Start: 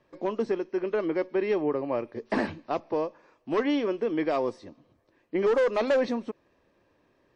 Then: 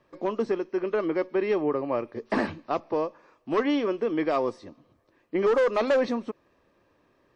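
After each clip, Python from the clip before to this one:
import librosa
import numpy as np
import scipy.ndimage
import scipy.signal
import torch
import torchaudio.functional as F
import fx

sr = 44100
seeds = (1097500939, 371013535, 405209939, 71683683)

y = fx.peak_eq(x, sr, hz=1200.0, db=5.0, octaves=0.26)
y = y * 10.0 ** (1.0 / 20.0)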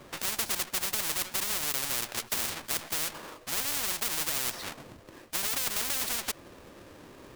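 y = fx.halfwave_hold(x, sr)
y = fx.spectral_comp(y, sr, ratio=10.0)
y = y * 10.0 ** (3.0 / 20.0)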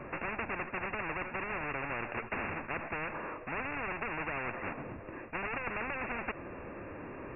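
y = fx.law_mismatch(x, sr, coded='mu')
y = fx.brickwall_lowpass(y, sr, high_hz=2800.0)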